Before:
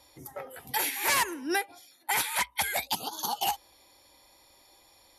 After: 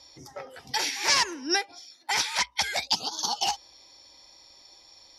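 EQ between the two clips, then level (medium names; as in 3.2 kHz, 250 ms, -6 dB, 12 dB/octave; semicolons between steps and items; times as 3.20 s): resonant low-pass 5.4 kHz, resonance Q 5; 0.0 dB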